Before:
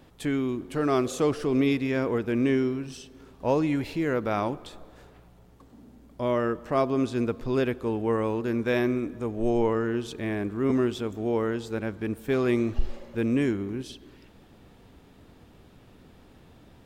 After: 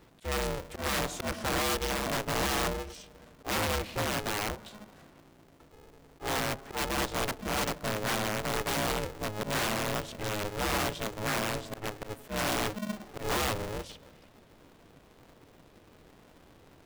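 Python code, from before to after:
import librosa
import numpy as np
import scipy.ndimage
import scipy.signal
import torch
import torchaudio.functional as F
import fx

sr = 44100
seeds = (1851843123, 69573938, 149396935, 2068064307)

y = fx.auto_swell(x, sr, attack_ms=124.0)
y = (np.mod(10.0 ** (20.5 / 20.0) * y + 1.0, 2.0) - 1.0) / 10.0 ** (20.5 / 20.0)
y = y * np.sign(np.sin(2.0 * np.pi * 210.0 * np.arange(len(y)) / sr))
y = F.gain(torch.from_numpy(y), -4.0).numpy()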